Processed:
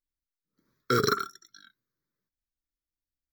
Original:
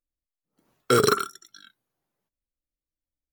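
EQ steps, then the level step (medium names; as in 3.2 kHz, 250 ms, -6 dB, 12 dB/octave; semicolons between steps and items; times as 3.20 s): static phaser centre 2.8 kHz, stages 6; -2.5 dB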